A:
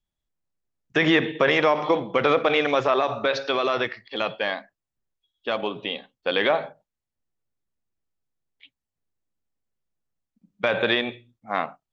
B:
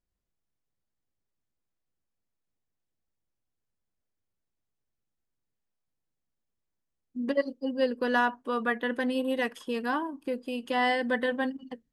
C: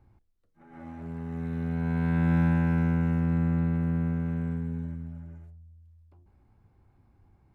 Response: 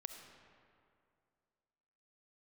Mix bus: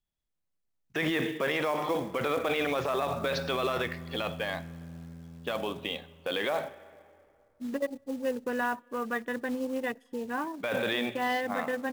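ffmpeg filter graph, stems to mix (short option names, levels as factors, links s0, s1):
-filter_complex "[0:a]volume=0.562,asplit=2[s0][s1];[s1]volume=0.299[s2];[1:a]afwtdn=0.0112,adelay=450,volume=0.631,asplit=2[s3][s4];[s4]volume=0.0891[s5];[2:a]lowpass=1200,adelay=1000,volume=0.141[s6];[3:a]atrim=start_sample=2205[s7];[s2][s5]amix=inputs=2:normalize=0[s8];[s8][s7]afir=irnorm=-1:irlink=0[s9];[s0][s3][s6][s9]amix=inputs=4:normalize=0,acrusher=bits=5:mode=log:mix=0:aa=0.000001,alimiter=limit=0.0944:level=0:latency=1:release=11"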